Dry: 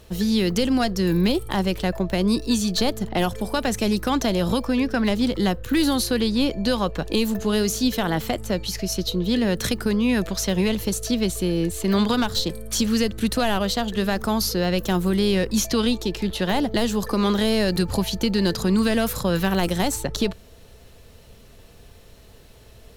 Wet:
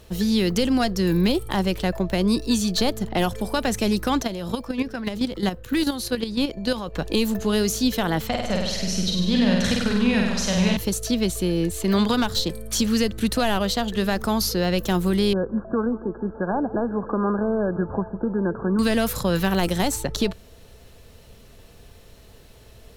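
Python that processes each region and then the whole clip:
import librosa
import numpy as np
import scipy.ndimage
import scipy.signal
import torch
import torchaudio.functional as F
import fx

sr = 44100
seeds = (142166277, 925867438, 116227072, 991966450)

y = fx.chain(x, sr, fx.low_shelf(hz=68.0, db=-4.0),
    fx.level_steps(step_db=10), at=(4.21, 6.94))
y = fx.chain(y, sr, fx.lowpass(hz=6600.0, slope=12),
    fx.peak_eq(hz=360.0, db=-12.5, octaves=0.43),
    fx.room_flutter(wall_m=8.5, rt60_s=1.1), at=(8.27, 10.77))
y = fx.chain(y, sr, fx.brickwall_lowpass(high_hz=1700.0),
    fx.low_shelf(hz=120.0, db=-11.0),
    fx.echo_feedback(ms=157, feedback_pct=58, wet_db=-18.5), at=(15.33, 18.79))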